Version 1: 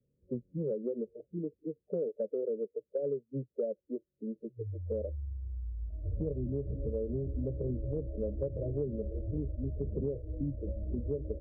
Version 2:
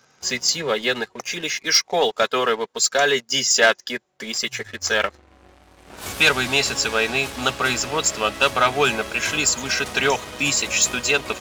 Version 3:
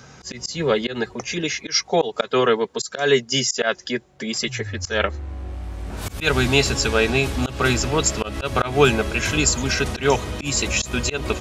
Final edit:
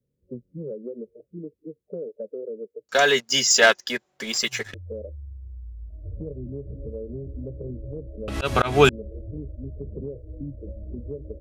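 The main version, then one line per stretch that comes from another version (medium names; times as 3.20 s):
1
2.89–4.74 s: from 2
8.28–8.89 s: from 3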